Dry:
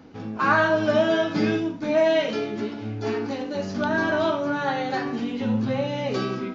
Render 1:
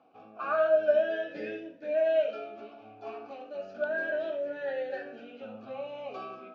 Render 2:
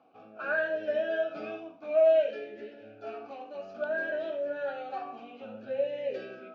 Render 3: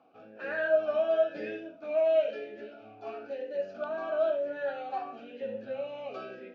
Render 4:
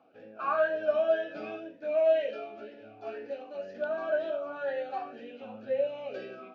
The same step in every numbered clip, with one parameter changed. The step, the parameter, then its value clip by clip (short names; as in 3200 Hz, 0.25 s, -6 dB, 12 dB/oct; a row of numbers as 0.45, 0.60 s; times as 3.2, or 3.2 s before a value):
vowel sweep, rate: 0.33, 0.58, 1, 2 Hz